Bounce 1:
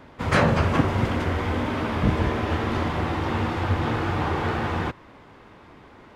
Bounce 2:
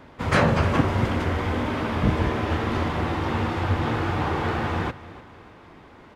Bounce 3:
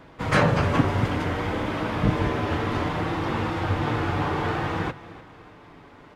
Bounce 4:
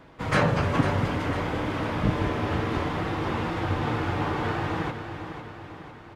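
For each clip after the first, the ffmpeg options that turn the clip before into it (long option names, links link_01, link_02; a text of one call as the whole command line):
ffmpeg -i in.wav -af "aecho=1:1:300|600|900|1200:0.126|0.0554|0.0244|0.0107" out.wav
ffmpeg -i in.wav -af "flanger=delay=6:depth=1.1:regen=-45:speed=0.6:shape=triangular,volume=3.5dB" out.wav
ffmpeg -i in.wav -af "aecho=1:1:500|1000|1500|2000|2500|3000:0.335|0.178|0.0941|0.0499|0.0264|0.014,volume=-2.5dB" out.wav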